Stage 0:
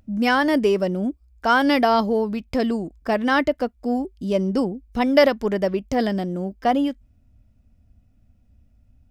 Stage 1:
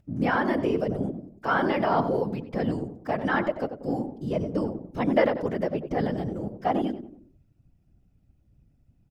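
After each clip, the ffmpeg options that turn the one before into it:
-filter_complex "[0:a]asplit=2[a][b];[b]adelay=92,lowpass=f=980:p=1,volume=-8dB,asplit=2[c][d];[d]adelay=92,lowpass=f=980:p=1,volume=0.45,asplit=2[e][f];[f]adelay=92,lowpass=f=980:p=1,volume=0.45,asplit=2[g][h];[h]adelay=92,lowpass=f=980:p=1,volume=0.45,asplit=2[i][j];[j]adelay=92,lowpass=f=980:p=1,volume=0.45[k];[a][c][e][g][i][k]amix=inputs=6:normalize=0,acrossover=split=2700[l][m];[m]acompressor=threshold=-46dB:ratio=4:attack=1:release=60[n];[l][n]amix=inputs=2:normalize=0,afftfilt=real='hypot(re,im)*cos(2*PI*random(0))':imag='hypot(re,im)*sin(2*PI*random(1))':win_size=512:overlap=0.75"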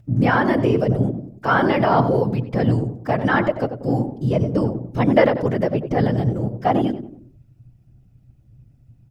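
-af "equalizer=f=120:t=o:w=0.35:g=14,volume=6.5dB"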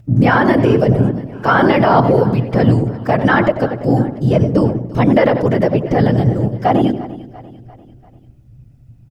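-af "aecho=1:1:344|688|1032|1376:0.106|0.0519|0.0254|0.0125,alimiter=level_in=7.5dB:limit=-1dB:release=50:level=0:latency=1,volume=-1dB"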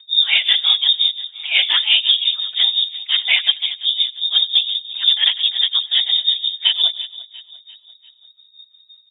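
-af "tremolo=f=5.7:d=0.82,lowpass=f=3.2k:t=q:w=0.5098,lowpass=f=3.2k:t=q:w=0.6013,lowpass=f=3.2k:t=q:w=0.9,lowpass=f=3.2k:t=q:w=2.563,afreqshift=-3800,volume=-1dB"

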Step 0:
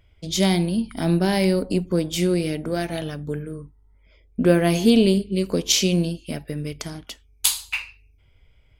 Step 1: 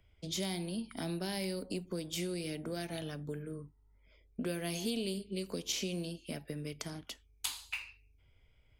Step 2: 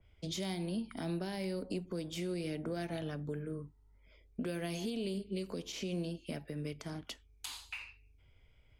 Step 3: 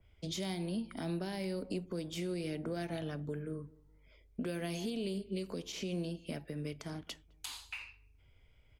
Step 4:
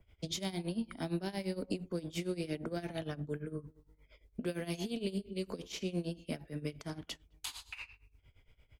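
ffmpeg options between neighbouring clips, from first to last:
-filter_complex "[0:a]acrossover=split=88|310|2700|6600[a][b][c][d][e];[a]acompressor=threshold=-56dB:ratio=4[f];[b]acompressor=threshold=-34dB:ratio=4[g];[c]acompressor=threshold=-33dB:ratio=4[h];[d]acompressor=threshold=-34dB:ratio=4[i];[e]acompressor=threshold=-35dB:ratio=4[j];[f][g][h][i][j]amix=inputs=5:normalize=0,volume=-8dB"
-af "highshelf=f=10k:g=-8,alimiter=level_in=6.5dB:limit=-24dB:level=0:latency=1:release=94,volume=-6.5dB,adynamicequalizer=threshold=0.00126:dfrequency=2400:dqfactor=0.7:tfrequency=2400:tqfactor=0.7:attack=5:release=100:ratio=0.375:range=3.5:mode=cutabove:tftype=highshelf,volume=2dB"
-filter_complex "[0:a]asplit=2[a][b];[b]adelay=211,lowpass=f=960:p=1,volume=-23dB,asplit=2[c][d];[d]adelay=211,lowpass=f=960:p=1,volume=0.35[e];[a][c][e]amix=inputs=3:normalize=0"
-af "tremolo=f=8.7:d=0.86,volume=4dB"

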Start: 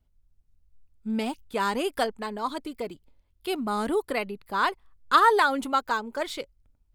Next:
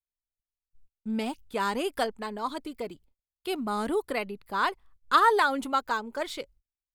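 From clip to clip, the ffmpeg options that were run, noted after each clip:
-af "agate=range=-34dB:threshold=-52dB:ratio=16:detection=peak,volume=-2dB"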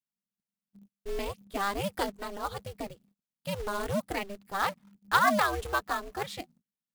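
-af "acrusher=bits=3:mode=log:mix=0:aa=0.000001,aeval=exprs='val(0)*sin(2*PI*200*n/s)':c=same"

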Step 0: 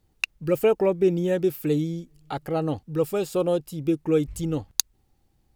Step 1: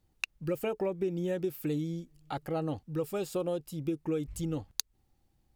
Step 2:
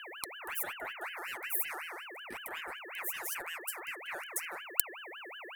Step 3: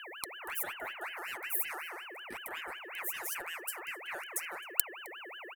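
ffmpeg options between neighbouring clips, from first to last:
-af "bandreject=f=430:w=12,acompressor=threshold=-23dB:ratio=6,volume=-5dB"
-af "aexciter=amount=15.5:drive=4.6:freq=7.9k,aeval=exprs='val(0)+0.0251*sin(2*PI*680*n/s)':c=same,aeval=exprs='val(0)*sin(2*PI*1700*n/s+1700*0.4/5.4*sin(2*PI*5.4*n/s))':c=same,volume=-8.5dB"
-filter_complex "[0:a]asplit=2[a][b];[b]adelay=262.4,volume=-21dB,highshelf=f=4k:g=-5.9[c];[a][c]amix=inputs=2:normalize=0"

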